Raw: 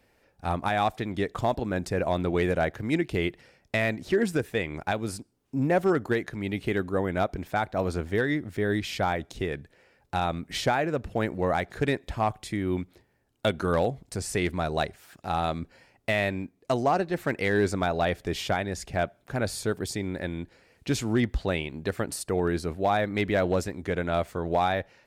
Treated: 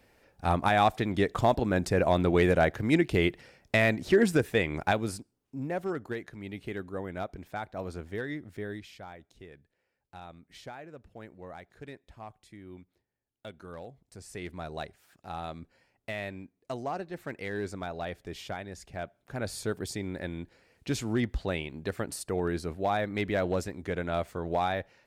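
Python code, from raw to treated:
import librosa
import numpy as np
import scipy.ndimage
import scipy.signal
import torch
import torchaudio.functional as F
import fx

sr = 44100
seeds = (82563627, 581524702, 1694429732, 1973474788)

y = fx.gain(x, sr, db=fx.line((4.91, 2.0), (5.55, -9.5), (8.6, -9.5), (9.01, -19.0), (13.86, -19.0), (14.62, -10.5), (19.01, -10.5), (19.6, -4.0)))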